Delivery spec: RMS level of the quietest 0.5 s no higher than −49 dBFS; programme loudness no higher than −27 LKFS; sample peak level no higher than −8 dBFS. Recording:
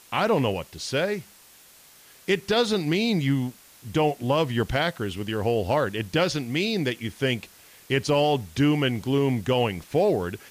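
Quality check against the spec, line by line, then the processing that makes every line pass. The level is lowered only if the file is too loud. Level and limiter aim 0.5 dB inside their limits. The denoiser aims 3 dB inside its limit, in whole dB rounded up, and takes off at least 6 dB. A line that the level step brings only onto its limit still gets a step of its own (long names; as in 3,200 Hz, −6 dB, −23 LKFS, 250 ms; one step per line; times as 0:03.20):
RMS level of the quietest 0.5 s −52 dBFS: in spec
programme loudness −25.0 LKFS: out of spec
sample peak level −11.0 dBFS: in spec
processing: level −2.5 dB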